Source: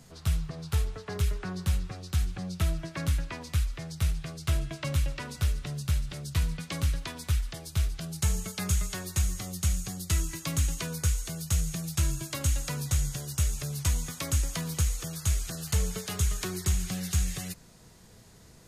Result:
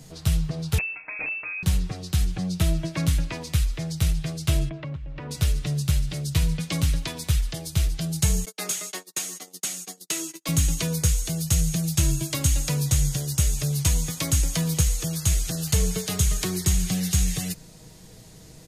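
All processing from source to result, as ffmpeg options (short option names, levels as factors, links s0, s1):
-filter_complex "[0:a]asettb=1/sr,asplit=3[s0][s1][s2];[s0]atrim=end=0.784[s3];[s1]atrim=start=0.78:end=1.63,asetpts=PTS-STARTPTS,afade=t=in:d=0.004:c=qsin,afade=t=out:st=0.846:d=0.004:c=qsin,aeval=exprs='(mod(11.2*val(0)+1,2)-1)/11.2':c=same,lowpass=f=2300:t=q:w=0.5098,lowpass=f=2300:t=q:w=0.6013,lowpass=f=2300:t=q:w=0.9,lowpass=f=2300:t=q:w=2.563,afreqshift=-2700,acrossover=split=590|1800[s4][s5][s6];[s4]acompressor=threshold=0.00316:ratio=4[s7];[s5]acompressor=threshold=0.00447:ratio=4[s8];[s6]acompressor=threshold=0.0112:ratio=4[s9];[s7][s8][s9]amix=inputs=3:normalize=0[s10];[s2]atrim=start=1.626[s11];[s3][s10]acrossfade=d=0.004:c1=hsin:c2=qsin[s12];[s12][s11]acrossfade=d=0.004:c1=qsin:c2=hsin,asettb=1/sr,asplit=3[s13][s14][s15];[s13]atrim=end=4.694[s16];[s14]atrim=start=4.69:end=5.31,asetpts=PTS-STARTPTS,afade=t=in:d=0.004:c=qsin,afade=t=out:st=0.616:d=0.004:c=qsin,lowpass=1700,acompressor=threshold=0.0141:ratio=20:attack=3.2:release=140:knee=1:detection=peak[s17];[s15]atrim=start=5.306[s18];[s16][s17]acrossfade=d=0.004:c1=hsin:c2=qsin[s19];[s19][s18]acrossfade=d=0.004:c1=qsin:c2=hsin,asettb=1/sr,asplit=3[s20][s21][s22];[s20]atrim=end=8.454[s23];[s21]atrim=start=8.45:end=10.49,asetpts=PTS-STARTPTS,afade=t=in:d=0.004:c=qsin,afade=t=out:st=2.036:d=0.004:c=qsin,agate=range=0.01:threshold=0.0158:ratio=16:release=100:detection=peak,highpass=f=290:w=0.5412,highpass=f=290:w=1.3066,highshelf=f=9700:g=-3.5[s24];[s22]atrim=start=10.486[s25];[s23][s24]acrossfade=d=0.004:c1=hsin:c2=qsin[s26];[s26][s25]acrossfade=d=0.004:c1=qsin:c2=hsin,equalizer=f=1300:t=o:w=1.2:g=-6.5,aecho=1:1:6.4:0.39,volume=2.24"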